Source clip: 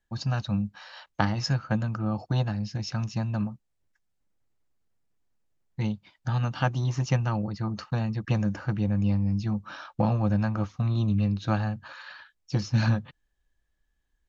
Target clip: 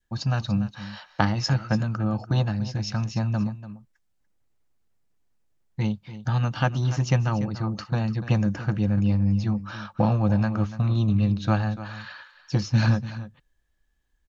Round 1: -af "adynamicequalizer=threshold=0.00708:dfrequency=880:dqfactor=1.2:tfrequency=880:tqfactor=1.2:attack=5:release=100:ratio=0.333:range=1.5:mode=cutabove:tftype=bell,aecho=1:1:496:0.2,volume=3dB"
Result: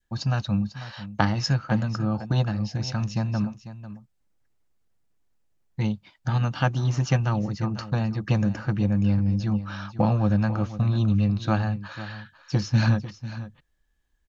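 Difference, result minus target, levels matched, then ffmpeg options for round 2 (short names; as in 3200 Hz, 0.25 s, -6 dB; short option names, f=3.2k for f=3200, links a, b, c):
echo 0.206 s late
-af "adynamicequalizer=threshold=0.00708:dfrequency=880:dqfactor=1.2:tfrequency=880:tqfactor=1.2:attack=5:release=100:ratio=0.333:range=1.5:mode=cutabove:tftype=bell,aecho=1:1:290:0.2,volume=3dB"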